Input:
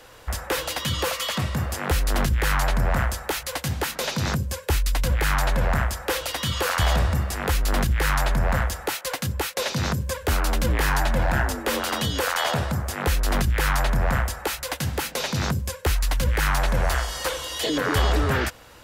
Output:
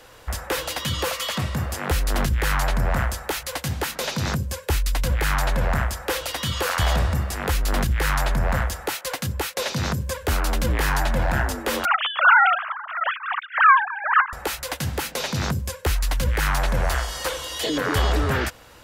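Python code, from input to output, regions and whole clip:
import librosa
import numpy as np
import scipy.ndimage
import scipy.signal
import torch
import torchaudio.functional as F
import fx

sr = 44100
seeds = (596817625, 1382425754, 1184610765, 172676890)

y = fx.chain(x, sr, fx.sine_speech(),
    fx.highpass_res(hz=1200.0, q=3.5),
    fx.upward_expand(threshold_db=-23.0, expansion=1.5), at=(11.85, 14.33))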